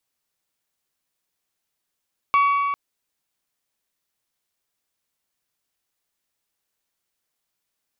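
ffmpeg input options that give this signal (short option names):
-f lavfi -i "aevalsrc='0.211*pow(10,-3*t/2.78)*sin(2*PI*1130*t)+0.0708*pow(10,-3*t/2.258)*sin(2*PI*2260*t)+0.0237*pow(10,-3*t/2.138)*sin(2*PI*2712*t)+0.00794*pow(10,-3*t/1.999)*sin(2*PI*3390*t)+0.00266*pow(10,-3*t/1.834)*sin(2*PI*4520*t)':d=0.4:s=44100"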